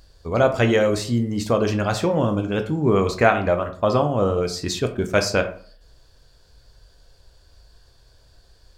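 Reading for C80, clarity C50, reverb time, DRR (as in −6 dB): 15.5 dB, 11.5 dB, 0.50 s, 5.5 dB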